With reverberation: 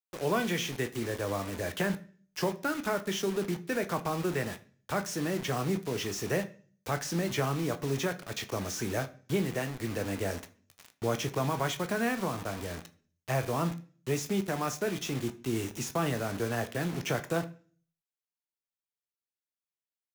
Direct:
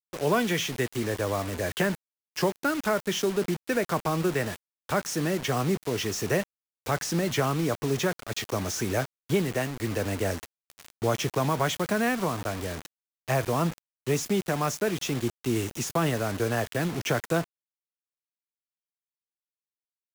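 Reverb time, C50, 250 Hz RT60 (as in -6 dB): 0.45 s, 17.0 dB, 0.60 s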